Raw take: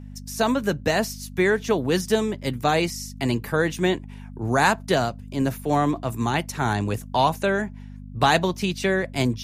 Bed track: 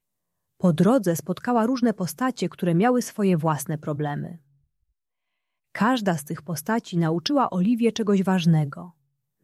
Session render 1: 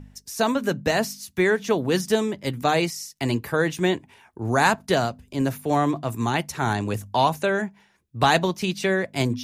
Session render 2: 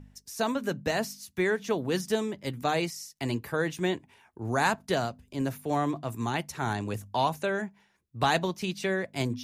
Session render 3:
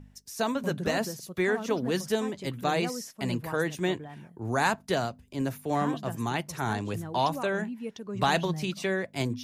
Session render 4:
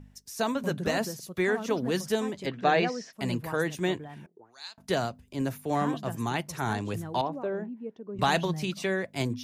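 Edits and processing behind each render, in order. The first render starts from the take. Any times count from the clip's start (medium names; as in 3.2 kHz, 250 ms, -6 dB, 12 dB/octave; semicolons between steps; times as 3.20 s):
de-hum 50 Hz, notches 5
trim -6.5 dB
add bed track -16 dB
2.46–3.13 s: cabinet simulation 160–5400 Hz, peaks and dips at 190 Hz +4 dB, 430 Hz +5 dB, 690 Hz +7 dB, 1.7 kHz +9 dB, 2.6 kHz +3 dB; 4.26–4.78 s: auto-wah 330–4300 Hz, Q 6.1, up, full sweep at -25.5 dBFS; 7.21–8.19 s: band-pass filter 370 Hz, Q 0.95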